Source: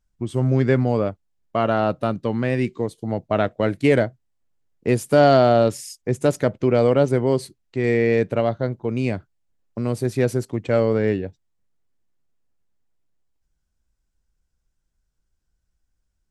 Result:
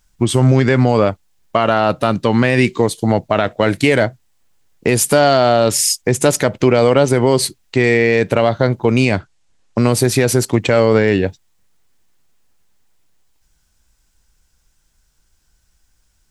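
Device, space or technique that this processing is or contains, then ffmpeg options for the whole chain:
mastering chain: -filter_complex "[0:a]equalizer=f=890:t=o:w=0.49:g=3,acompressor=threshold=0.112:ratio=3,tiltshelf=f=1300:g=-5,alimiter=level_in=7.5:limit=0.891:release=50:level=0:latency=1,asettb=1/sr,asplit=3[s0][s1][s2];[s0]atrim=end=9.054[s3];[s1]atrim=start=9.05:end=9.92,asetpts=PTS-STARTPTS,afade=t=in:d=0.004:c=qsin,afade=t=out:st=0.866:d=0.004:c=qsin,lowpass=f=8800:w=0.5412,lowpass=f=8800:w=1.3066[s4];[s2]atrim=start=9.916[s5];[s3][s4]acrossfade=d=0.004:c1=hsin:c2=qsin[s6];[s6][s5]acrossfade=d=0.004:c1=qsin:c2=hsin,volume=0.891"

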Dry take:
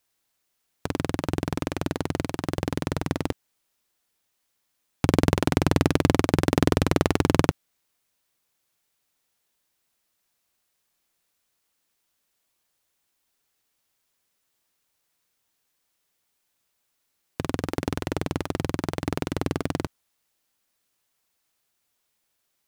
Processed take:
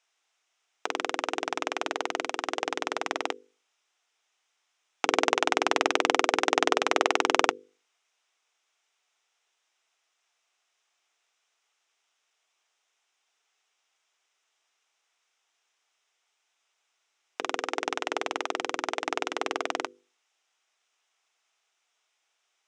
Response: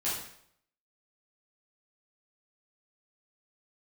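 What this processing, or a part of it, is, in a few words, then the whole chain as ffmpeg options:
phone speaker on a table: -af "highpass=f=490:w=0.5412,highpass=f=490:w=1.3066,equalizer=f=550:t=q:w=4:g=-10,equalizer=f=980:t=q:w=4:g=-4,equalizer=f=1700:t=q:w=4:g=-4,equalizer=f=4400:t=q:w=4:g=-10,lowpass=f=6400:w=0.5412,lowpass=f=6400:w=1.3066,lowshelf=f=190:g=5.5,bandreject=f=50:t=h:w=6,bandreject=f=100:t=h:w=6,bandreject=f=150:t=h:w=6,bandreject=f=200:t=h:w=6,bandreject=f=250:t=h:w=6,bandreject=f=300:t=h:w=6,bandreject=f=350:t=h:w=6,bandreject=f=400:t=h:w=6,bandreject=f=450:t=h:w=6,bandreject=f=500:t=h:w=6,volume=2.11"

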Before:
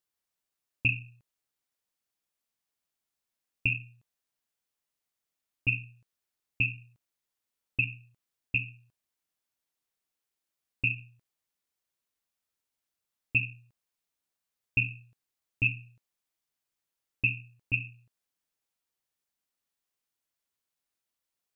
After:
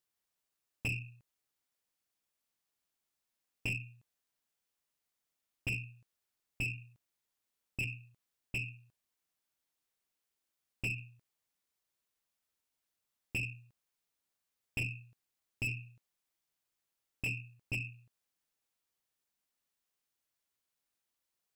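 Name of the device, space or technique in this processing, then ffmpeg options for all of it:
saturation between pre-emphasis and de-emphasis: -af "highshelf=f=2400:g=10,asoftclip=type=tanh:threshold=0.0447,highshelf=f=2400:g=-10"

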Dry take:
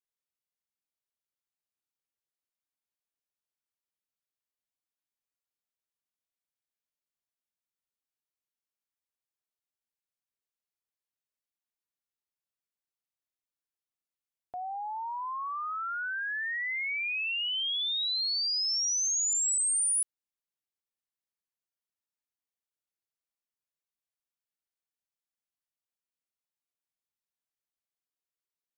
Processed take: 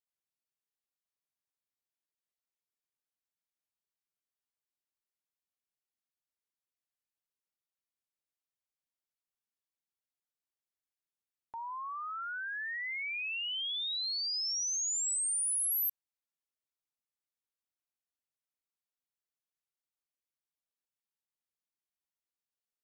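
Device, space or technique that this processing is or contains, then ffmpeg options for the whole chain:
nightcore: -af "asetrate=55566,aresample=44100,volume=0.631"

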